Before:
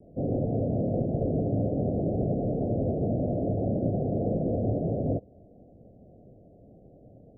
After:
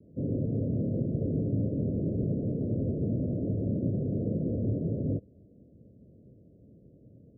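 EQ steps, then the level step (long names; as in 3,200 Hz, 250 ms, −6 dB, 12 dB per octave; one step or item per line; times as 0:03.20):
moving average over 57 samples
high-pass filter 62 Hz
0.0 dB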